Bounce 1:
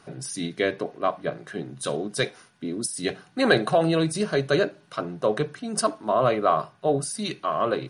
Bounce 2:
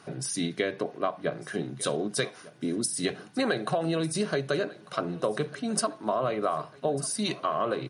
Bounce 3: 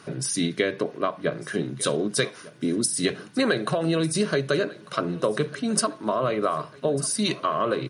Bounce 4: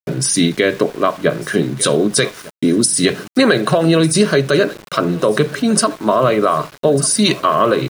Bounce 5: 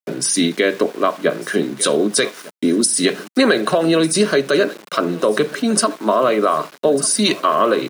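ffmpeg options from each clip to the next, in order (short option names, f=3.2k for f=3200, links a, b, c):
-af "highpass=81,acompressor=threshold=-25dB:ratio=12,aecho=1:1:1198|2396|3594:0.1|0.046|0.0212,volume=1.5dB"
-af "equalizer=f=760:t=o:w=0.32:g=-9,volume=5dB"
-af "agate=range=-33dB:threshold=-40dB:ratio=3:detection=peak,aeval=exprs='val(0)*gte(abs(val(0)),0.00708)':c=same,alimiter=level_in=12dB:limit=-1dB:release=50:level=0:latency=1,volume=-1dB"
-af "highpass=f=200:w=0.5412,highpass=f=200:w=1.3066,volume=-1.5dB"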